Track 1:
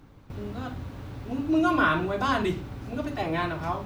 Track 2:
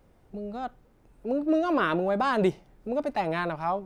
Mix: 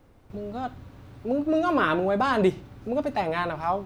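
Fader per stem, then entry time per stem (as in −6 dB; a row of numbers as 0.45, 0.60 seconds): −7.5, +1.5 decibels; 0.00, 0.00 seconds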